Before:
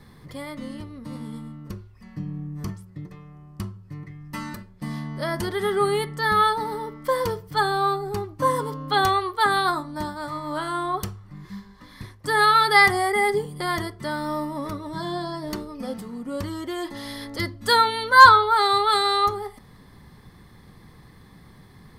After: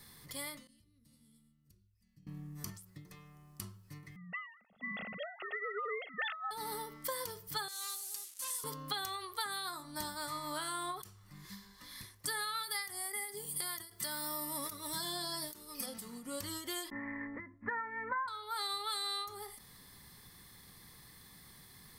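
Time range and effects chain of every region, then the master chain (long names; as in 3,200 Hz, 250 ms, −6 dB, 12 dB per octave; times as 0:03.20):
0:00.67–0:02.27: high-pass filter 40 Hz + guitar amp tone stack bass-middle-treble 10-0-1 + mains-hum notches 50/100/150/200/250/300/350 Hz
0:04.16–0:06.51: three sine waves on the formant tracks + comb filter 1.5 ms, depth 77% + compressor whose output falls as the input rises −21 dBFS
0:07.68–0:08.64: linear delta modulator 64 kbit/s, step −39 dBFS + first difference
0:12.63–0:15.86: high-shelf EQ 9,500 Hz +11.5 dB + one half of a high-frequency compander encoder only
0:16.90–0:18.28: Butterworth low-pass 2,300 Hz 96 dB per octave + downward expander −36 dBFS + hollow resonant body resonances 250/1,000/1,800 Hz, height 11 dB, ringing for 40 ms
whole clip: first-order pre-emphasis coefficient 0.9; downward compressor 20 to 1, threshold −41 dBFS; every ending faded ahead of time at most 110 dB per second; level +6.5 dB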